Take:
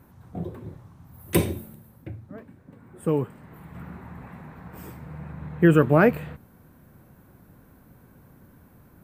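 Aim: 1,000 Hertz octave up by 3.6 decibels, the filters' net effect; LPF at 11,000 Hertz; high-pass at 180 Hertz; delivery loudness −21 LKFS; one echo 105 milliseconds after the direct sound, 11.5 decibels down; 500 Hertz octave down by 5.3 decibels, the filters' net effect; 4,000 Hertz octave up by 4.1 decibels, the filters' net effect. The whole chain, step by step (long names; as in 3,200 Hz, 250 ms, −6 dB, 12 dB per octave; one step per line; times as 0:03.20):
high-pass filter 180 Hz
low-pass filter 11,000 Hz
parametric band 500 Hz −8.5 dB
parametric band 1,000 Hz +7 dB
parametric band 4,000 Hz +5 dB
single-tap delay 105 ms −11.5 dB
level +4 dB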